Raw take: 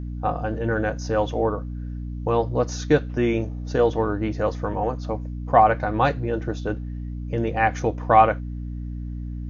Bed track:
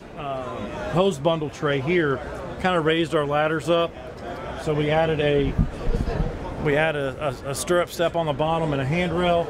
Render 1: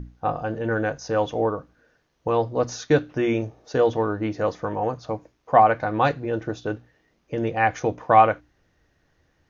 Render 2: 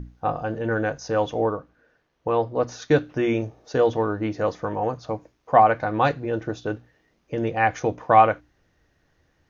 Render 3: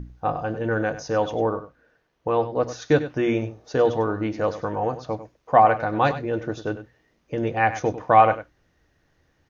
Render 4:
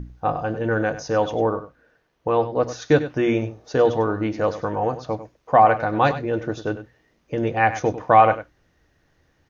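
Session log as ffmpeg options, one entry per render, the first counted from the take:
-af "bandreject=f=60:t=h:w=6,bandreject=f=120:t=h:w=6,bandreject=f=180:t=h:w=6,bandreject=f=240:t=h:w=6,bandreject=f=300:t=h:w=6"
-filter_complex "[0:a]asettb=1/sr,asplit=3[s0][s1][s2];[s0]atrim=end=1.574[s3];[s1]atrim=start=1.57:end=2.82,asetpts=PTS-STARTPTS,afade=t=in:d=0.004:c=qsin,afade=t=out:st=1.246:d=0.004:c=qsin,bass=f=250:g=-3,treble=f=4000:g=-8[s4];[s2]atrim=start=2.816[s5];[s3][s4]acrossfade=d=0.004:c1=hsin:c2=qsin[s6];[s6][s5]acrossfade=d=0.004:c1=qsin:c2=hsin"
-af "aecho=1:1:98:0.224"
-af "volume=1.26,alimiter=limit=0.708:level=0:latency=1"

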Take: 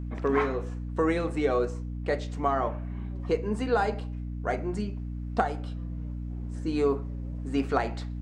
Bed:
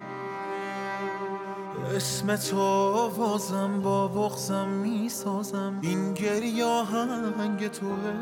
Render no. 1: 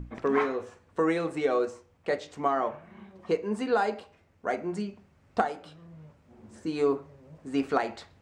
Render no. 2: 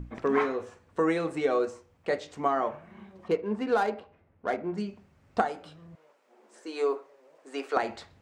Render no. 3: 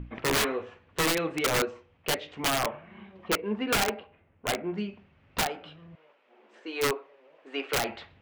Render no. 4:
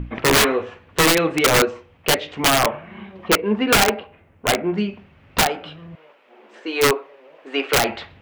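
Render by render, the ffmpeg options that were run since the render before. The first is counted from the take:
-af "bandreject=f=60:t=h:w=6,bandreject=f=120:t=h:w=6,bandreject=f=180:t=h:w=6,bandreject=f=240:t=h:w=6,bandreject=f=300:t=h:w=6"
-filter_complex "[0:a]asettb=1/sr,asplit=3[s0][s1][s2];[s0]atrim=end=3.284[s3];[s1]atrim=start=3.28:end=4.78,asetpts=PTS-STARTPTS,afade=t=in:d=0.004:c=qsin,afade=t=out:st=1.496:d=0.004:c=qsin,adynamicsmooth=sensitivity=6:basefreq=2200[s4];[s2]atrim=start=4.776[s5];[s3][s4]acrossfade=d=0.004:c1=hsin:c2=qsin[s6];[s6][s5]acrossfade=d=0.004:c1=qsin:c2=hsin,asettb=1/sr,asplit=3[s7][s8][s9];[s7]atrim=end=5.954[s10];[s8]atrim=start=5.95:end=7.77,asetpts=PTS-STARTPTS,afade=t=in:d=0.004:c=qsin,afade=t=out:st=1.816:d=0.004:c=qsin,highpass=f=390:w=0.5412,highpass=f=390:w=1.3066[s11];[s9]atrim=start=7.766[s12];[s10][s11]acrossfade=d=0.004:c1=hsin:c2=qsin[s13];[s13][s12]acrossfade=d=0.004:c1=qsin:c2=hsin"
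-af "lowpass=f=2900:t=q:w=2.4,aeval=exprs='(mod(9.44*val(0)+1,2)-1)/9.44':c=same"
-af "volume=3.35"

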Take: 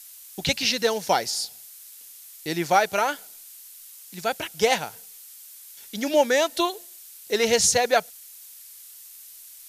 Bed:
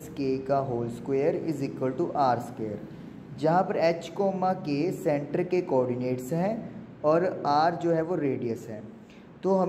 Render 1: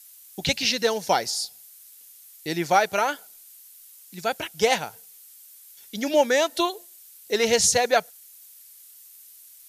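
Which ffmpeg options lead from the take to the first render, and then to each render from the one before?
-af "afftdn=nr=6:nf=-46"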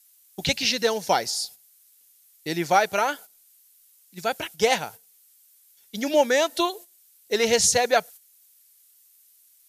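-af "agate=range=0.355:threshold=0.01:ratio=16:detection=peak"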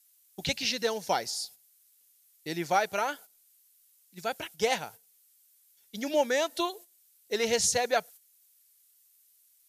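-af "volume=0.473"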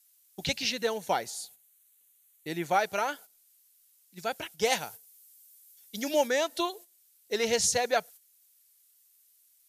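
-filter_complex "[0:a]asettb=1/sr,asplit=3[s0][s1][s2];[s0]atrim=end=0.704[s3];[s1]atrim=start=0.7:end=2.79,asetpts=PTS-STARTPTS,afade=t=in:d=0.004:c=qsin,afade=t=out:st=2.086:d=0.004:c=qsin,equalizer=f=5100:t=o:w=0.33:g=-13.5[s4];[s2]atrim=start=2.786[s5];[s3][s4]acrossfade=d=0.004:c1=hsin:c2=qsin[s6];[s6][s5]acrossfade=d=0.004:c1=qsin:c2=hsin,asettb=1/sr,asplit=3[s7][s8][s9];[s7]atrim=end=4.654[s10];[s8]atrim=start=4.65:end=6.28,asetpts=PTS-STARTPTS,afade=t=in:d=0.004:c=qsin,afade=t=out:st=1.626:d=0.004:c=qsin,highshelf=f=5000:g=8[s11];[s9]atrim=start=6.276[s12];[s10][s11]acrossfade=d=0.004:c1=hsin:c2=qsin[s13];[s13][s12]acrossfade=d=0.004:c1=qsin:c2=hsin"

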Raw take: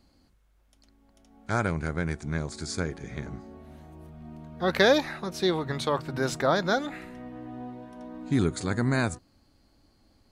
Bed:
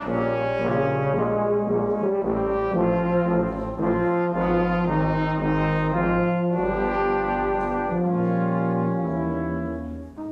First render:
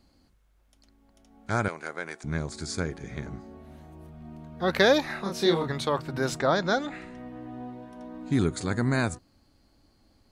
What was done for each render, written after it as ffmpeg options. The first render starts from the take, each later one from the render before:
-filter_complex "[0:a]asettb=1/sr,asplit=3[s0][s1][s2];[s0]atrim=end=1.684[s3];[s1]atrim=start=1.68:end=2.24,asetpts=PTS-STARTPTS,afade=t=in:d=0.004:c=qsin,afade=t=out:st=0.556:d=0.004:c=qsin,highpass=500[s4];[s2]atrim=start=2.236[s5];[s3][s4]acrossfade=d=0.004:c1=hsin:c2=qsin[s6];[s6][s5]acrossfade=d=0.004:c1=qsin:c2=hsin,asettb=1/sr,asplit=3[s7][s8][s9];[s7]atrim=end=5.064[s10];[s8]atrim=start=5.06:end=5.68,asetpts=PTS-STARTPTS,afade=t=in:d=0.004:c=qsin,afade=t=out:st=0.616:d=0.004:c=qsin,asplit=2[s11][s12];[s12]adelay=30,volume=0.794[s13];[s11][s13]amix=inputs=2:normalize=0,atrim=end_sample=27342[s14];[s9]atrim=start=5.676[s15];[s10][s14]acrossfade=d=0.004:c1=hsin:c2=qsin[s16];[s16][s15]acrossfade=d=0.004:c1=qsin:c2=hsin,asettb=1/sr,asplit=3[s17][s18][s19];[s17]atrim=end=6.394[s20];[s18]atrim=start=6.39:end=7.18,asetpts=PTS-STARTPTS,afade=t=in:d=0.004:c=qsin,afade=t=out:st=0.786:d=0.004:c=qsin,lowpass=f=8800:w=0.5412,lowpass=f=8800:w=1.3066[s21];[s19]atrim=start=7.176[s22];[s20][s21]acrossfade=d=0.004:c1=hsin:c2=qsin[s23];[s23][s22]acrossfade=d=0.004:c1=qsin:c2=hsin"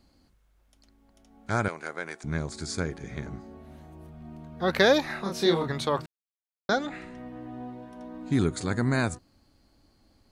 -filter_complex "[0:a]asplit=3[s0][s1][s2];[s0]atrim=end=6.06,asetpts=PTS-STARTPTS,afade=t=out:st=6.056:d=0.004:c=hsin[s3];[s1]atrim=start=6.06:end=6.69,asetpts=PTS-STARTPTS,volume=0[s4];[s2]atrim=start=6.69,asetpts=PTS-STARTPTS,afade=t=in:d=0.004:c=hsin[s5];[s3][s4][s5]concat=n=3:v=0:a=1"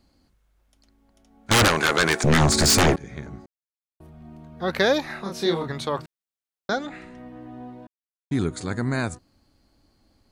-filter_complex "[0:a]asettb=1/sr,asplit=3[s0][s1][s2];[s0]atrim=end=1.514[s3];[s1]atrim=start=1.51:end=2.96,asetpts=PTS-STARTPTS,afade=t=in:d=0.004:c=qsin,afade=t=out:st=1.446:d=0.004:c=qsin,aeval=exprs='0.224*sin(PI/2*7.94*val(0)/0.224)':c=same[s4];[s2]atrim=start=2.956[s5];[s3][s4]acrossfade=d=0.004:c1=hsin:c2=qsin[s6];[s6][s5]acrossfade=d=0.004:c1=qsin:c2=hsin,asplit=5[s7][s8][s9][s10][s11];[s7]atrim=end=3.46,asetpts=PTS-STARTPTS,afade=t=out:st=3.456:d=0.004:c=hsin[s12];[s8]atrim=start=3.46:end=4,asetpts=PTS-STARTPTS,volume=0[s13];[s9]atrim=start=4:end=7.87,asetpts=PTS-STARTPTS,afade=t=in:d=0.004:c=hsin,afade=t=out:st=3.866:d=0.004:c=hsin[s14];[s10]atrim=start=7.87:end=8.31,asetpts=PTS-STARTPTS,volume=0[s15];[s11]atrim=start=8.31,asetpts=PTS-STARTPTS,afade=t=in:d=0.004:c=hsin[s16];[s12][s13][s14][s15][s16]concat=n=5:v=0:a=1"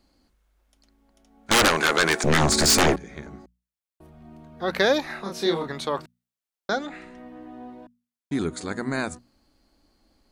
-af "equalizer=f=110:t=o:w=0.64:g=-13.5,bandreject=f=60:t=h:w=6,bandreject=f=120:t=h:w=6,bandreject=f=180:t=h:w=6,bandreject=f=240:t=h:w=6"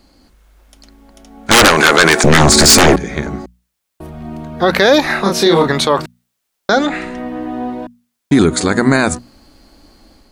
-af "dynaudnorm=f=130:g=5:m=1.68,alimiter=level_in=5.01:limit=0.891:release=50:level=0:latency=1"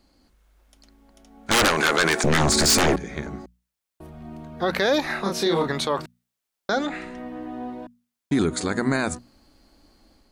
-af "volume=0.282"

